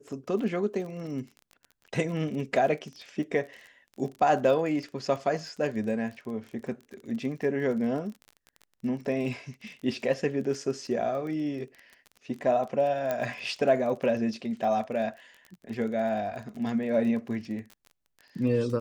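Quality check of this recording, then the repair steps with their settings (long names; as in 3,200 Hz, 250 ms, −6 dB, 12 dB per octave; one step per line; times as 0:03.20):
surface crackle 27 per second −37 dBFS
0:13.11: click −16 dBFS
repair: click removal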